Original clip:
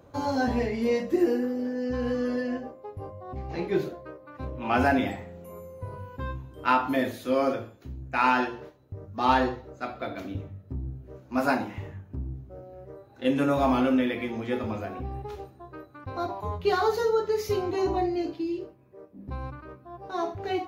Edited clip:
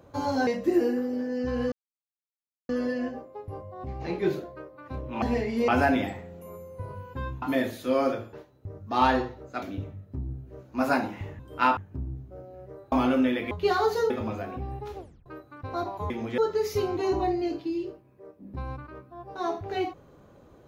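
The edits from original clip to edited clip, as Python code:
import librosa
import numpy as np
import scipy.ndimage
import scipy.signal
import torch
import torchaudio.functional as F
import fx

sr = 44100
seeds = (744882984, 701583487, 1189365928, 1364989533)

y = fx.edit(x, sr, fx.move(start_s=0.47, length_s=0.46, to_s=4.71),
    fx.insert_silence(at_s=2.18, length_s=0.97),
    fx.move(start_s=6.45, length_s=0.38, to_s=11.96),
    fx.cut(start_s=7.74, length_s=0.86),
    fx.cut(start_s=9.89, length_s=0.3),
    fx.cut(start_s=13.11, length_s=0.55),
    fx.swap(start_s=14.25, length_s=0.28, other_s=16.53, other_length_s=0.59),
    fx.tape_stop(start_s=15.41, length_s=0.28), tone=tone)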